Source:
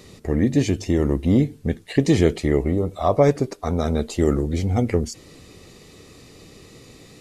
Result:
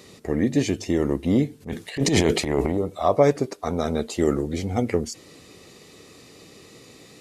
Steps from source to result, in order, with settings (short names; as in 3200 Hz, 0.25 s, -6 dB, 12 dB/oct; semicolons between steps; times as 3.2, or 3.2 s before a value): HPF 210 Hz 6 dB/oct; 1.6–2.77 transient shaper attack -11 dB, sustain +10 dB